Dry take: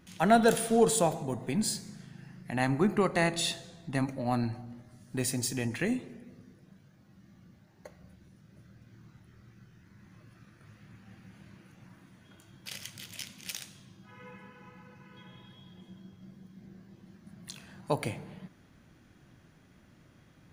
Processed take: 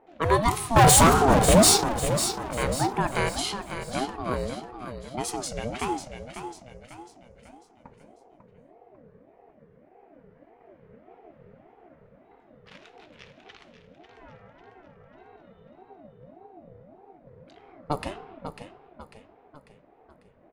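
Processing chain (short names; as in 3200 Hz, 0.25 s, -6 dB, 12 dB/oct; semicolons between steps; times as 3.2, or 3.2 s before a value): 13.15–13.58 LPF 9800 Hz -> 4100 Hz; low-pass opened by the level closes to 1100 Hz, open at -25.5 dBFS; 0.76–1.84 sample leveller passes 5; feedback echo 0.546 s, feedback 44%, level -9 dB; ring modulator with a swept carrier 450 Hz, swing 35%, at 1.7 Hz; gain +3.5 dB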